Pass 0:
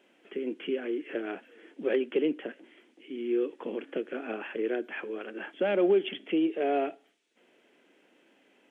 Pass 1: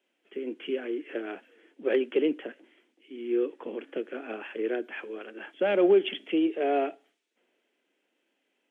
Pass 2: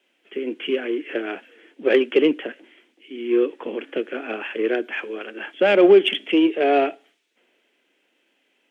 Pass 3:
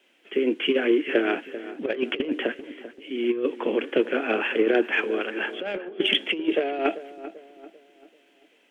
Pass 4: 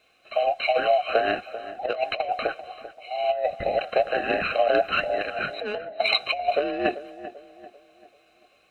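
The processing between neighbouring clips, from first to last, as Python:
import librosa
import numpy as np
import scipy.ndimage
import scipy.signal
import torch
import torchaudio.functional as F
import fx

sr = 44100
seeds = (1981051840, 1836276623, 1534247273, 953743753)

y1 = scipy.signal.sosfilt(scipy.signal.butter(2, 210.0, 'highpass', fs=sr, output='sos'), x)
y1 = fx.band_widen(y1, sr, depth_pct=40)
y1 = y1 * librosa.db_to_amplitude(1.0)
y2 = fx.peak_eq(y1, sr, hz=2800.0, db=4.5, octaves=1.8)
y2 = fx.cheby_harmonics(y2, sr, harmonics=(7,), levels_db=(-35,), full_scale_db=-12.5)
y2 = y2 * librosa.db_to_amplitude(8.0)
y3 = fx.over_compress(y2, sr, threshold_db=-22.0, ratio=-0.5)
y3 = fx.echo_filtered(y3, sr, ms=391, feedback_pct=44, hz=1500.0, wet_db=-13.5)
y4 = fx.band_invert(y3, sr, width_hz=1000)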